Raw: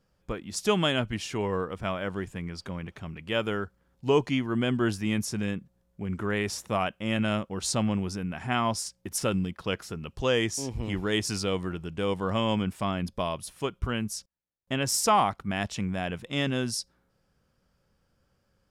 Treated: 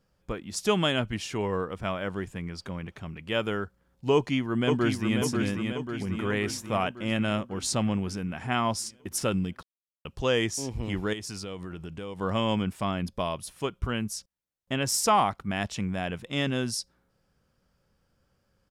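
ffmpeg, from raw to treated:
-filter_complex "[0:a]asplit=2[a][b];[b]afade=t=in:st=4.13:d=0.01,afade=t=out:st=5.18:d=0.01,aecho=0:1:540|1080|1620|2160|2700|3240|3780|4320|4860:0.595662|0.357397|0.214438|0.128663|0.0771978|0.0463187|0.0277912|0.0166747|0.0100048[c];[a][c]amix=inputs=2:normalize=0,asettb=1/sr,asplit=3[d][e][f];[d]atrim=end=11.134[g];[e]atrim=start=11.13:end=12.21,asetpts=PTS-STARTPTS,afade=t=in:d=0.004:c=qsin,afade=t=out:st=1.076:d=0.004:c=qsin,acompressor=threshold=-34dB:ratio=5:attack=3.2:release=140:knee=1:detection=peak[h];[f]atrim=start=12.206[i];[g][h]acrossfade=d=0.004:c1=hsin:c2=qsin[j];[j][i]acrossfade=d=0.004:c1=qsin:c2=hsin,asplit=3[k][l][m];[k]atrim=end=9.63,asetpts=PTS-STARTPTS,afade=t=out:st=9.626:d=0.004:c=hsin[n];[l]atrim=start=9.63:end=10.05,asetpts=PTS-STARTPTS,volume=0[o];[m]atrim=start=10.05,asetpts=PTS-STARTPTS,afade=t=in:d=0.004:c=hsin[p];[n][o][p]concat=n=3:v=0:a=1"

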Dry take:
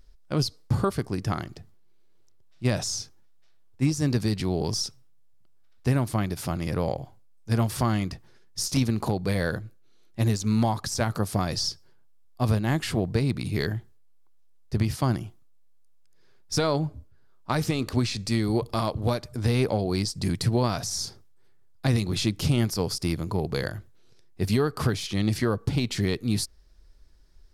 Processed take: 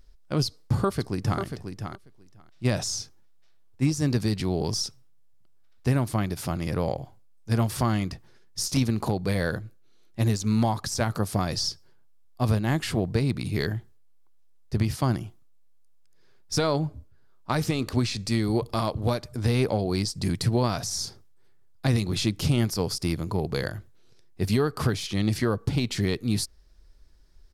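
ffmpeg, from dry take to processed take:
-filter_complex "[0:a]asplit=2[a][b];[b]afade=t=in:st=0.46:d=0.01,afade=t=out:st=1.41:d=0.01,aecho=0:1:540|1080:0.421697|0.0421697[c];[a][c]amix=inputs=2:normalize=0"

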